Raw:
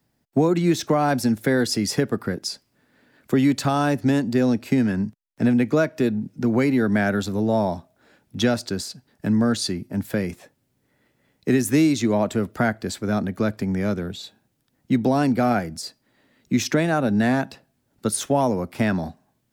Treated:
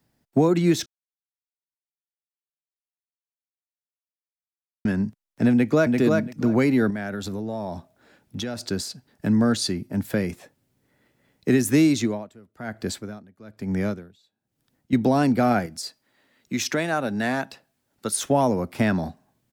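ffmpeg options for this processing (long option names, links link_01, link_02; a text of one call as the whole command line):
ffmpeg -i in.wav -filter_complex "[0:a]asplit=2[link_01][link_02];[link_02]afade=type=in:start_time=5.52:duration=0.01,afade=type=out:start_time=5.98:duration=0.01,aecho=0:1:340|680|1020:0.707946|0.106192|0.0159288[link_03];[link_01][link_03]amix=inputs=2:normalize=0,asettb=1/sr,asplit=3[link_04][link_05][link_06];[link_04]atrim=end=6.904[link_07];[link_05]atrim=start=6.9:end=8.67,asetpts=PTS-STARTPTS,afade=type=in:duration=0.004:curve=qsin,afade=type=out:start_time=1.766:duration=0.004:curve=qsin,acompressor=threshold=-27dB:ratio=5:attack=3.2:release=140:knee=1:detection=peak[link_08];[link_06]atrim=start=8.666[link_09];[link_07][link_08]acrossfade=duration=0.004:curve1=hsin:curve2=qsin[link_10];[link_10][link_09]acrossfade=duration=0.004:curve1=qsin:curve2=hsin,asettb=1/sr,asplit=3[link_11][link_12][link_13];[link_11]atrim=end=11.974[link_14];[link_12]atrim=start=11.97:end=14.93,asetpts=PTS-STARTPTS,afade=type=in:duration=0.004:curve=qsin,afade=type=out:start_time=2.956:duration=0.004:curve=qsin,aeval=exprs='val(0)*pow(10,-26*(0.5-0.5*cos(2*PI*1.1*n/s))/20)':channel_layout=same[link_15];[link_13]atrim=start=14.926[link_16];[link_14][link_15]acrossfade=duration=0.004:curve1=hsin:curve2=qsin[link_17];[link_17][link_16]acrossfade=duration=0.004:curve1=qsin:curve2=hsin,asettb=1/sr,asplit=3[link_18][link_19][link_20];[link_18]atrim=end=15.664[link_21];[link_19]atrim=start=15.66:end=18.23,asetpts=PTS-STARTPTS,afade=type=in:duration=0.004:curve=qsin,afade=type=out:start_time=2.566:duration=0.004:curve=qsin,lowshelf=frequency=410:gain=-9.5[link_22];[link_20]atrim=start=18.226[link_23];[link_21][link_22]acrossfade=duration=0.004:curve1=hsin:curve2=qsin[link_24];[link_24][link_23]acrossfade=duration=0.004:curve1=qsin:curve2=hsin,asplit=3[link_25][link_26][link_27];[link_25]atrim=end=0.86,asetpts=PTS-STARTPTS,afade=type=out:start_time=0.856:duration=0.004:curve=hsin[link_28];[link_26]atrim=start=0.86:end=4.85,asetpts=PTS-STARTPTS,volume=0[link_29];[link_27]atrim=start=4.85,asetpts=PTS-STARTPTS,afade=type=in:duration=0.004:curve=hsin[link_30];[link_28][link_29][link_30]concat=n=3:v=0:a=1" out.wav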